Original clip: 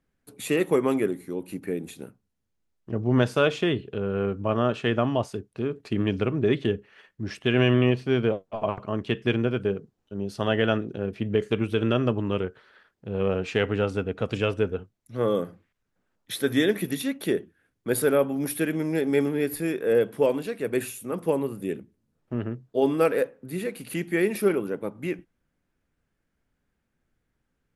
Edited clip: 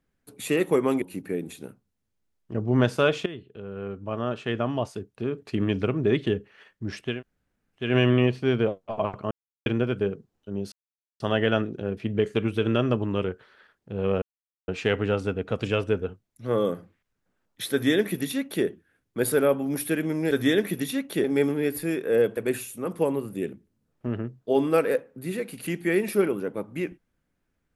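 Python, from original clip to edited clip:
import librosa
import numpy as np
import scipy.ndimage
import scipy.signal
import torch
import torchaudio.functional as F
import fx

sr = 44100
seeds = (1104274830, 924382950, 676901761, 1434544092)

y = fx.edit(x, sr, fx.cut(start_s=1.02, length_s=0.38),
    fx.fade_in_from(start_s=3.64, length_s=2.21, floor_db=-14.5),
    fx.insert_room_tone(at_s=7.49, length_s=0.74, crossfade_s=0.24),
    fx.silence(start_s=8.95, length_s=0.35),
    fx.insert_silence(at_s=10.36, length_s=0.48),
    fx.insert_silence(at_s=13.38, length_s=0.46),
    fx.duplicate(start_s=16.42, length_s=0.93, to_s=19.01),
    fx.cut(start_s=20.14, length_s=0.5), tone=tone)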